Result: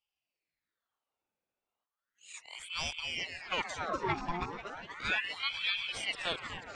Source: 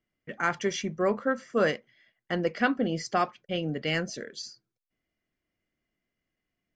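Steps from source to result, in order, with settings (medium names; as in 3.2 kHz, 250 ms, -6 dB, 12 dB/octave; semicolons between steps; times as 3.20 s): reverse the whole clip; echo whose repeats swap between lows and highs 122 ms, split 810 Hz, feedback 85%, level -8 dB; ring modulator with a swept carrier 1.7 kHz, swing 70%, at 0.35 Hz; trim -5.5 dB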